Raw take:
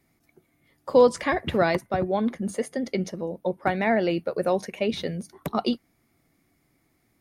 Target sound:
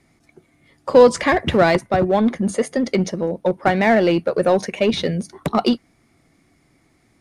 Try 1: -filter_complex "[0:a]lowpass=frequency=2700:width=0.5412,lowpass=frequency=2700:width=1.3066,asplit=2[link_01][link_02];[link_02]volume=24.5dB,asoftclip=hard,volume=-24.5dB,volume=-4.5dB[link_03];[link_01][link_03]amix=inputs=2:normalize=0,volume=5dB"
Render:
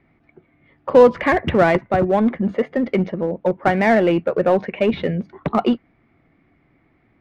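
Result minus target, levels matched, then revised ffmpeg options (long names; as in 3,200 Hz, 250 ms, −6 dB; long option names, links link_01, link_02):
8,000 Hz band −16.0 dB
-filter_complex "[0:a]lowpass=frequency=9700:width=0.5412,lowpass=frequency=9700:width=1.3066,asplit=2[link_01][link_02];[link_02]volume=24.5dB,asoftclip=hard,volume=-24.5dB,volume=-4.5dB[link_03];[link_01][link_03]amix=inputs=2:normalize=0,volume=5dB"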